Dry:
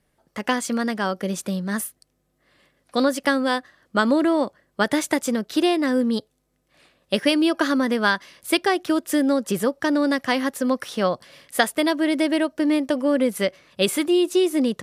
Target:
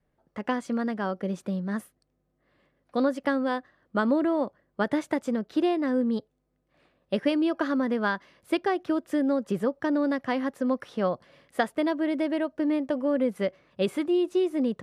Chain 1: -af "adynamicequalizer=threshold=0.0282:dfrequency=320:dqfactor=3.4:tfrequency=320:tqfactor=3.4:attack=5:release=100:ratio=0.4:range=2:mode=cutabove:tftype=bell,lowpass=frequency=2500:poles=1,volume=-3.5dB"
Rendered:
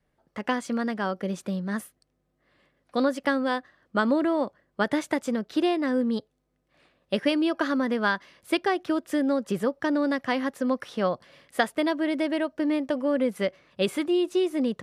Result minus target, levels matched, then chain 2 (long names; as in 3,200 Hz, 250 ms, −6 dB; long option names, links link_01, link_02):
2,000 Hz band +3.0 dB
-af "adynamicequalizer=threshold=0.0282:dfrequency=320:dqfactor=3.4:tfrequency=320:tqfactor=3.4:attack=5:release=100:ratio=0.4:range=2:mode=cutabove:tftype=bell,lowpass=frequency=1100:poles=1,volume=-3.5dB"